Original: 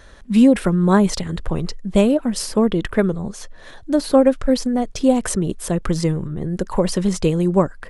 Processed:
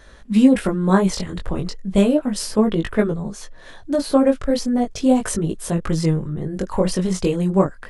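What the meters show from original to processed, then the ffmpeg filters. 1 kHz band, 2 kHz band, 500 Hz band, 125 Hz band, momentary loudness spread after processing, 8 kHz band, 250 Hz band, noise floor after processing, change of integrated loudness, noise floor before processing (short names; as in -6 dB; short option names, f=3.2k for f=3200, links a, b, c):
-1.0 dB, -1.0 dB, -1.5 dB, -1.0 dB, 11 LU, -1.5 dB, -1.0 dB, -42 dBFS, -1.0 dB, -41 dBFS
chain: -af "flanger=delay=18.5:depth=3.3:speed=0.35,volume=2dB"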